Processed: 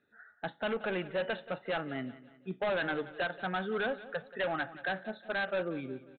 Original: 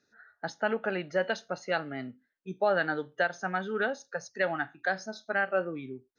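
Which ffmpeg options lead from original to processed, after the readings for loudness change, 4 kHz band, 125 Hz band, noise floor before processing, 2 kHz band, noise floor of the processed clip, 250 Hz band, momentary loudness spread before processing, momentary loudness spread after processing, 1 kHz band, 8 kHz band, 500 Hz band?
-4.0 dB, 0.0 dB, -1.0 dB, -76 dBFS, -4.5 dB, -64 dBFS, -1.5 dB, 12 LU, 8 LU, -4.5 dB, no reading, -3.5 dB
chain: -af "aresample=8000,asoftclip=type=hard:threshold=0.0376,aresample=44100,aecho=1:1:180|360|540|720:0.15|0.0658|0.029|0.0127"

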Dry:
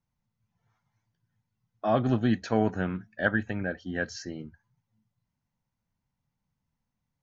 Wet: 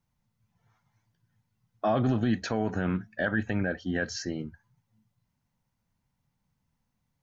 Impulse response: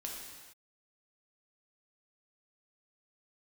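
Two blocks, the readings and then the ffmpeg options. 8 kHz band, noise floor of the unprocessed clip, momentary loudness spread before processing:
no reading, -84 dBFS, 13 LU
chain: -af "alimiter=limit=0.0841:level=0:latency=1:release=49,volume=1.68"

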